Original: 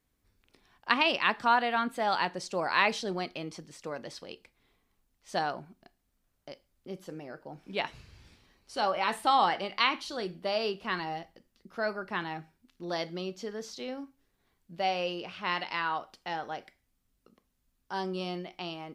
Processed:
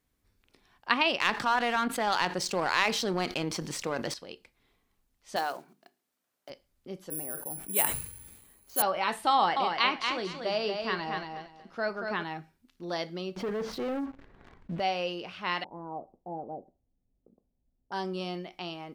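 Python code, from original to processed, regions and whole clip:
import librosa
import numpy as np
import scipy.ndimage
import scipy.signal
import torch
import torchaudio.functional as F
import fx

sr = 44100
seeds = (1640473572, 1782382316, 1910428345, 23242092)

y = fx.chain(x, sr, fx.peak_eq(hz=640.0, db=-4.0, octaves=0.26),
    fx.power_curve(exponent=1.4),
    fx.env_flatten(amount_pct=70), at=(1.2, 4.14))
y = fx.chain(y, sr, fx.block_float(bits=5),
    fx.highpass(hz=300.0, slope=12),
    fx.hum_notches(base_hz=50, count=9), at=(5.36, 6.5))
y = fx.chain(y, sr, fx.lowpass(hz=3100.0, slope=6),
    fx.resample_bad(factor=4, down='filtered', up='zero_stuff'),
    fx.sustainer(db_per_s=73.0), at=(7.1, 8.82))
y = fx.chain(y, sr, fx.lowpass(hz=7800.0, slope=12),
    fx.echo_feedback(ms=233, feedback_pct=21, wet_db=-5), at=(9.33, 12.23))
y = fx.chain(y, sr, fx.lowpass(hz=1700.0, slope=12),
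    fx.leveller(passes=3),
    fx.env_flatten(amount_pct=50), at=(13.36, 14.8))
y = fx.chain(y, sr, fx.steep_lowpass(hz=770.0, slope=36),
    fx.dynamic_eq(hz=250.0, q=1.0, threshold_db=-56.0, ratio=4.0, max_db=4), at=(15.64, 17.92))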